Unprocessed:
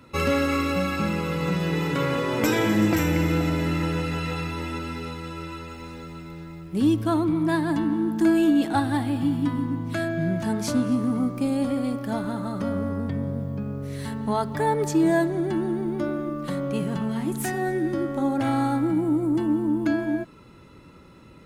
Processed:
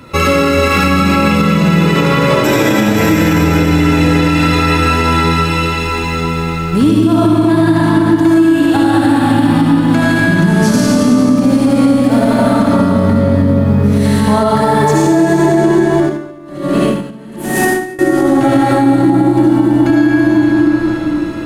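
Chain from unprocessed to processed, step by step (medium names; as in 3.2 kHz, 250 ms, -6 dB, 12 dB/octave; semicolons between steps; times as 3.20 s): reverberation RT60 3.6 s, pre-delay 35 ms, DRR -8.5 dB; compression 6:1, threshold -19 dBFS, peak gain reduction 13 dB; loudness maximiser +14.5 dB; 15.98–17.99 s: logarithmic tremolo 1.2 Hz, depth 22 dB; trim -1 dB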